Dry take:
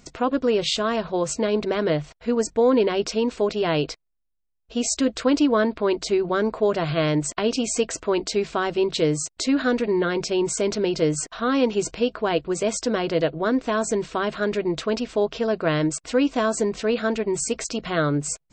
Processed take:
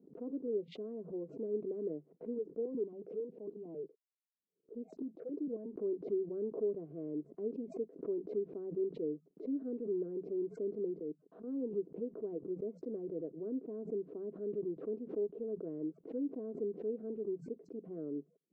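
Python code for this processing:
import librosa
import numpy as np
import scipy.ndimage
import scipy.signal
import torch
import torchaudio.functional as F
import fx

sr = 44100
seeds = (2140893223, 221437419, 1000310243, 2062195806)

y = fx.phaser_held(x, sr, hz=11.0, low_hz=240.0, high_hz=1800.0, at=(2.38, 5.75))
y = fx.level_steps(y, sr, step_db=23, at=(10.97, 11.46), fade=0.02)
y = scipy.signal.sosfilt(scipy.signal.cheby1(3, 1.0, [170.0, 430.0], 'bandpass', fs=sr, output='sos'), y)
y = np.diff(y, prepend=0.0)
y = fx.pre_swell(y, sr, db_per_s=140.0)
y = y * librosa.db_to_amplitude(12.5)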